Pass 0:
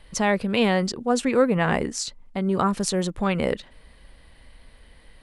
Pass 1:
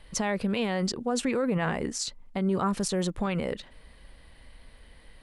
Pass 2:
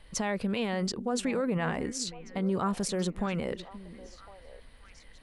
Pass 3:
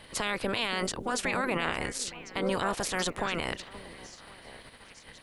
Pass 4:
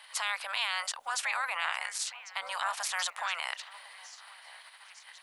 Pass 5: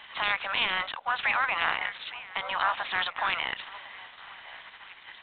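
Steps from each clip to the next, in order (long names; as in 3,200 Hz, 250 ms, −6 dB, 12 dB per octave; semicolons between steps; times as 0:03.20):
brickwall limiter −17 dBFS, peak gain reduction 11 dB; level −1.5 dB
echo through a band-pass that steps 528 ms, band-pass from 260 Hz, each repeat 1.4 octaves, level −11 dB; level −2.5 dB
ceiling on every frequency bin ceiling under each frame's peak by 23 dB
inverse Chebyshev high-pass filter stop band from 400 Hz, stop band 40 dB
level +6.5 dB; G.726 24 kbit/s 8,000 Hz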